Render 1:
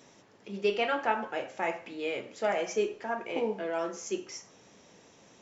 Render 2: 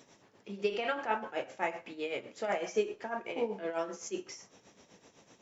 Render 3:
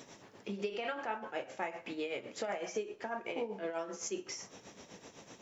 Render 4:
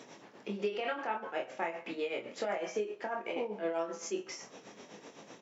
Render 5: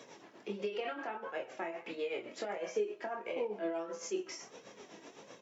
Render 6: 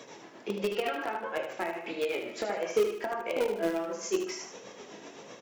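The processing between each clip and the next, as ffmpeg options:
ffmpeg -i in.wav -af "tremolo=f=7.9:d=0.67" out.wav
ffmpeg -i in.wav -af "acompressor=threshold=-43dB:ratio=4,volume=6.5dB" out.wav
ffmpeg -i in.wav -filter_complex "[0:a]highpass=180,highshelf=frequency=6700:gain=-11.5,asplit=2[link_01][link_02];[link_02]adelay=24,volume=-6dB[link_03];[link_01][link_03]amix=inputs=2:normalize=0,volume=2dB" out.wav
ffmpeg -i in.wav -filter_complex "[0:a]acrossover=split=430[link_01][link_02];[link_02]acompressor=threshold=-36dB:ratio=4[link_03];[link_01][link_03]amix=inputs=2:normalize=0,flanger=delay=1.8:depth=1.3:regen=44:speed=1.5:shape=sinusoidal,volume=2.5dB" out.wav
ffmpeg -i in.wav -filter_complex "[0:a]asplit=2[link_01][link_02];[link_02]acrusher=bits=4:mix=0:aa=0.000001,volume=-12dB[link_03];[link_01][link_03]amix=inputs=2:normalize=0,aecho=1:1:76|152|228|304|380:0.447|0.192|0.0826|0.0355|0.0153,volume=5.5dB" out.wav

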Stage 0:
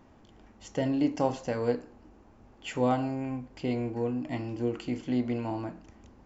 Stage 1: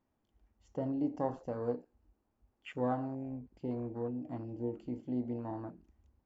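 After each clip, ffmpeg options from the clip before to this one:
ffmpeg -i in.wav -af "afwtdn=0.0141,volume=-7dB" out.wav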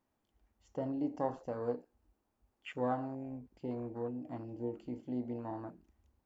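ffmpeg -i in.wav -af "lowshelf=frequency=390:gain=-5.5,volume=1.5dB" out.wav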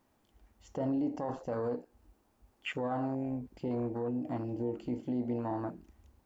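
ffmpeg -i in.wav -filter_complex "[0:a]asplit=2[link_01][link_02];[link_02]acompressor=threshold=-45dB:ratio=6,volume=0dB[link_03];[link_01][link_03]amix=inputs=2:normalize=0,alimiter=level_in=5.5dB:limit=-24dB:level=0:latency=1:release=16,volume=-5.5dB,volume=4dB" out.wav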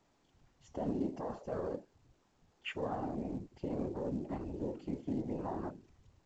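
ffmpeg -i in.wav -af "afftfilt=real='hypot(re,im)*cos(2*PI*random(0))':imag='hypot(re,im)*sin(2*PI*random(1))':win_size=512:overlap=0.75,volume=2dB" -ar 16000 -c:a pcm_mulaw out.wav

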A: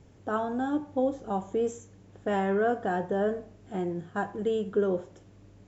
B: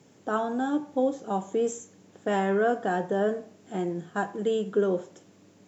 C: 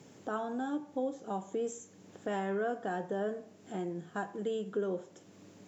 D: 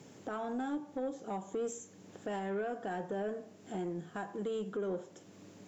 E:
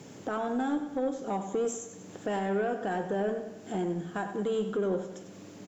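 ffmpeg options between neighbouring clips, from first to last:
ffmpeg -i in.wav -af "highpass=frequency=150:width=0.5412,highpass=frequency=150:width=1.3066,aemphasis=mode=production:type=cd,volume=2dB" out.wav
ffmpeg -i in.wav -af "acompressor=threshold=-53dB:ratio=1.5,volume=2dB" out.wav
ffmpeg -i in.wav -af "alimiter=level_in=3.5dB:limit=-24dB:level=0:latency=1:release=137,volume=-3.5dB,asoftclip=type=tanh:threshold=-29.5dB,volume=1dB" out.wav
ffmpeg -i in.wav -af "aecho=1:1:97|194|291|388|485|582:0.282|0.149|0.0792|0.042|0.0222|0.0118,volume=6.5dB" out.wav

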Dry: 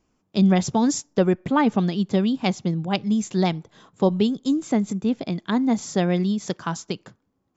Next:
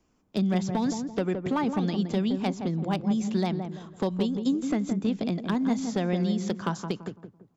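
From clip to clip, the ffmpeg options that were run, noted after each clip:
ffmpeg -i in.wav -filter_complex "[0:a]acrossover=split=130|1600|4700[link_01][link_02][link_03][link_04];[link_01]acompressor=threshold=-45dB:ratio=4[link_05];[link_02]acompressor=threshold=-25dB:ratio=4[link_06];[link_03]acompressor=threshold=-42dB:ratio=4[link_07];[link_04]acompressor=threshold=-50dB:ratio=4[link_08];[link_05][link_06][link_07][link_08]amix=inputs=4:normalize=0,volume=19dB,asoftclip=hard,volume=-19dB,asplit=2[link_09][link_10];[link_10]adelay=168,lowpass=frequency=900:poles=1,volume=-5.5dB,asplit=2[link_11][link_12];[link_12]adelay=168,lowpass=frequency=900:poles=1,volume=0.38,asplit=2[link_13][link_14];[link_14]adelay=168,lowpass=frequency=900:poles=1,volume=0.38,asplit=2[link_15][link_16];[link_16]adelay=168,lowpass=frequency=900:poles=1,volume=0.38,asplit=2[link_17][link_18];[link_18]adelay=168,lowpass=frequency=900:poles=1,volume=0.38[link_19];[link_11][link_13][link_15][link_17][link_19]amix=inputs=5:normalize=0[link_20];[link_09][link_20]amix=inputs=2:normalize=0" out.wav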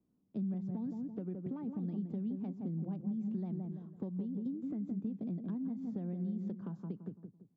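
ffmpeg -i in.wav -af "alimiter=limit=-20.5dB:level=0:latency=1:release=281,acompressor=threshold=-29dB:ratio=6,bandpass=frequency=190:width_type=q:width=1.3:csg=0,volume=-3.5dB" out.wav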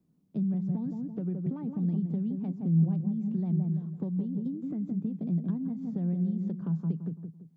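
ffmpeg -i in.wav -af "equalizer=frequency=160:width=4.9:gain=13.5,volume=3.5dB" out.wav

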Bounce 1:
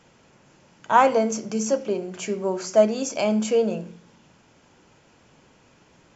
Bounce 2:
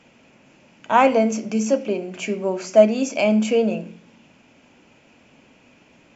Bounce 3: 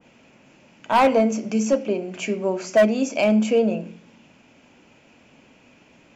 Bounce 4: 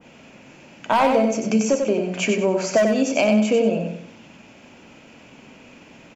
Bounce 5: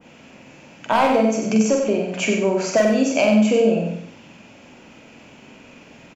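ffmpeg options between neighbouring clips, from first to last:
ffmpeg -i in.wav -af "equalizer=frequency=250:width_type=o:width=0.67:gain=10,equalizer=frequency=630:width_type=o:width=0.67:gain=6,equalizer=frequency=2500:width_type=o:width=0.67:gain=11,volume=-2.5dB" out.wav
ffmpeg -i in.wav -af "volume=10.5dB,asoftclip=hard,volume=-10.5dB,adynamicequalizer=threshold=0.0224:dfrequency=1500:dqfactor=0.7:tfrequency=1500:tqfactor=0.7:attack=5:release=100:ratio=0.375:range=2.5:mode=cutabove:tftype=highshelf" out.wav
ffmpeg -i in.wav -filter_complex "[0:a]acompressor=threshold=-22dB:ratio=5,asplit=2[link_01][link_02];[link_02]aecho=0:1:94|188|282|376:0.531|0.175|0.0578|0.0191[link_03];[link_01][link_03]amix=inputs=2:normalize=0,volume=6dB" out.wav
ffmpeg -i in.wav -filter_complex "[0:a]asplit=2[link_01][link_02];[link_02]adelay=46,volume=-5dB[link_03];[link_01][link_03]amix=inputs=2:normalize=0" out.wav

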